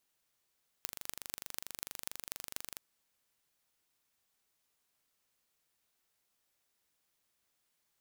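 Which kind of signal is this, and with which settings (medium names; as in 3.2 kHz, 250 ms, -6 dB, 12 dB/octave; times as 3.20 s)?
pulse train 24.5 per s, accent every 6, -9 dBFS 1.95 s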